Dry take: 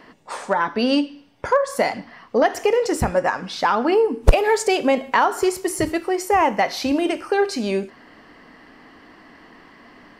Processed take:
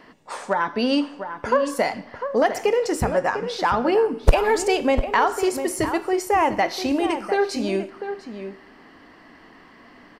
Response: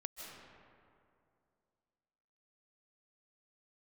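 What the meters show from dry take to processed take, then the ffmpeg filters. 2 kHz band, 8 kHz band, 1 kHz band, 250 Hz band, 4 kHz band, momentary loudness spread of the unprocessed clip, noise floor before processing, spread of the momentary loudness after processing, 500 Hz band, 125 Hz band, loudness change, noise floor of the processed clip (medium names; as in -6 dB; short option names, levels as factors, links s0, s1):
-1.5 dB, -2.0 dB, -1.5 dB, -1.5 dB, -2.0 dB, 7 LU, -49 dBFS, 12 LU, -1.5 dB, -1.5 dB, -2.0 dB, -49 dBFS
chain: -filter_complex "[0:a]asplit=2[s0][s1];[s1]adelay=699.7,volume=0.355,highshelf=f=4000:g=-15.7[s2];[s0][s2]amix=inputs=2:normalize=0,asplit=2[s3][s4];[1:a]atrim=start_sample=2205,asetrate=66150,aresample=44100[s5];[s4][s5]afir=irnorm=-1:irlink=0,volume=0.158[s6];[s3][s6]amix=inputs=2:normalize=0,volume=0.75"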